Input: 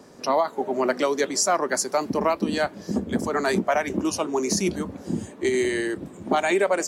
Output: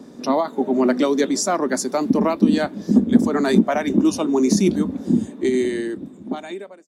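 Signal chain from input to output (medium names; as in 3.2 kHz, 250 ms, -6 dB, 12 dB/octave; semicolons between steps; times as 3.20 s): fade out at the end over 1.82 s; small resonant body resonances 240/3600 Hz, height 14 dB, ringing for 25 ms; trim -1 dB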